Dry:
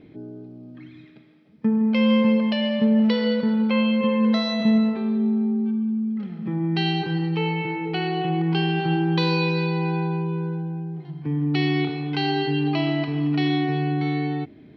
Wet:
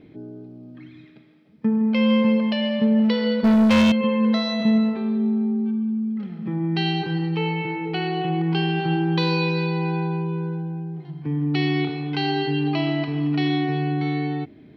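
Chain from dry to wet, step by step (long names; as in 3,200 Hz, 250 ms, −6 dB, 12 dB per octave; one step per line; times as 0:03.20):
0:03.44–0:03.92: leveller curve on the samples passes 3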